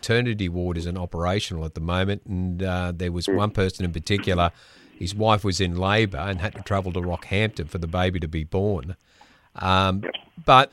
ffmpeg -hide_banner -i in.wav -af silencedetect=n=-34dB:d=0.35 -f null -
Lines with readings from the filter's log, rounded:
silence_start: 4.50
silence_end: 5.01 | silence_duration: 0.51
silence_start: 8.92
silence_end: 9.56 | silence_duration: 0.64